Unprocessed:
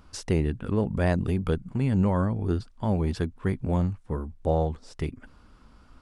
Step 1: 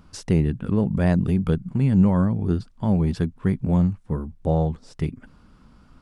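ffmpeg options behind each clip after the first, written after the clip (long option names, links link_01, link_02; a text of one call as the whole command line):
ffmpeg -i in.wav -af "equalizer=frequency=170:width=1.3:gain=8.5" out.wav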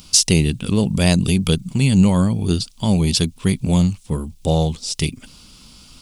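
ffmpeg -i in.wav -af "aexciter=amount=6.2:drive=8.6:freq=2500,volume=3.5dB" out.wav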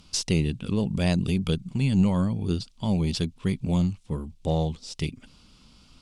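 ffmpeg -i in.wav -af "aeval=exprs='0.891*(cos(1*acos(clip(val(0)/0.891,-1,1)))-cos(1*PI/2))+0.02*(cos(6*acos(clip(val(0)/0.891,-1,1)))-cos(6*PI/2))':channel_layout=same,aemphasis=mode=reproduction:type=50fm,volume=-8dB" out.wav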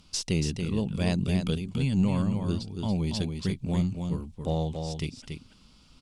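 ffmpeg -i in.wav -af "aecho=1:1:282:0.501,volume=-3.5dB" out.wav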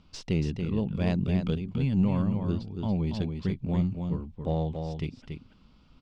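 ffmpeg -i in.wav -af "adynamicsmooth=sensitivity=0.5:basefreq=2800" out.wav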